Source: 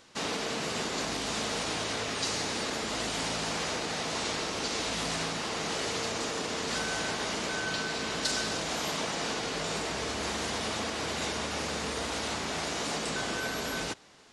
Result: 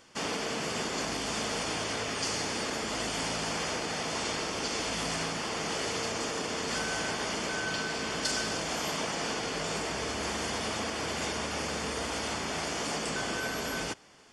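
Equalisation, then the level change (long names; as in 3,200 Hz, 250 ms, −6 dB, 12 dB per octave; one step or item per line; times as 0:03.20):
Butterworth band-reject 3,900 Hz, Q 7.8
0.0 dB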